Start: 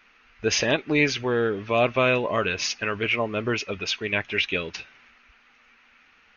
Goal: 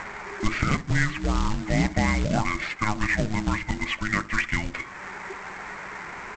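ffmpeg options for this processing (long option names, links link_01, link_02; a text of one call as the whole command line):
ffmpeg -i in.wav -filter_complex "[0:a]asplit=2[link_01][link_02];[link_02]acompressor=mode=upward:threshold=-28dB:ratio=2.5,volume=-1dB[link_03];[link_01][link_03]amix=inputs=2:normalize=0,lowpass=frequency=2700:width=0.5412,lowpass=frequency=2700:width=1.3066,acompressor=threshold=-35dB:ratio=2,asplit=2[link_04][link_05];[link_05]adelay=65,lowpass=frequency=1100:poles=1,volume=-14dB,asplit=2[link_06][link_07];[link_07]adelay=65,lowpass=frequency=1100:poles=1,volume=0.42,asplit=2[link_08][link_09];[link_09]adelay=65,lowpass=frequency=1100:poles=1,volume=0.42,asplit=2[link_10][link_11];[link_11]adelay=65,lowpass=frequency=1100:poles=1,volume=0.42[link_12];[link_04][link_06][link_08][link_10][link_12]amix=inputs=5:normalize=0,afreqshift=-430,aresample=16000,acrusher=bits=3:mode=log:mix=0:aa=0.000001,aresample=44100,volume=5.5dB" out.wav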